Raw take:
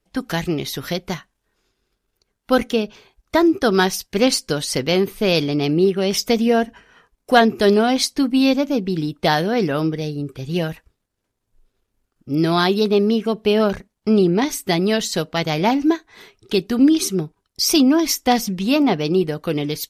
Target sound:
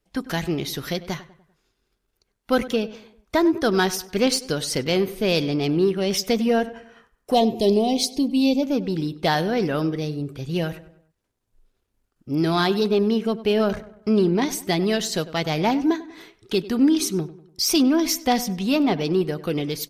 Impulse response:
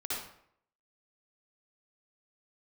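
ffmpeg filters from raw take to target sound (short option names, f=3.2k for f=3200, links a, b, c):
-filter_complex "[0:a]asplit=2[a][b];[b]asoftclip=type=tanh:threshold=-19.5dB,volume=-8dB[c];[a][c]amix=inputs=2:normalize=0,asplit=3[d][e][f];[d]afade=t=out:st=7.33:d=0.02[g];[e]asuperstop=centerf=1500:order=4:qfactor=0.85,afade=t=in:st=7.33:d=0.02,afade=t=out:st=8.62:d=0.02[h];[f]afade=t=in:st=8.62:d=0.02[i];[g][h][i]amix=inputs=3:normalize=0,asplit=2[j][k];[k]adelay=98,lowpass=f=2.5k:p=1,volume=-16dB,asplit=2[l][m];[m]adelay=98,lowpass=f=2.5k:p=1,volume=0.45,asplit=2[n][o];[o]adelay=98,lowpass=f=2.5k:p=1,volume=0.45,asplit=2[p][q];[q]adelay=98,lowpass=f=2.5k:p=1,volume=0.45[r];[j][l][n][p][r]amix=inputs=5:normalize=0,volume=-5dB"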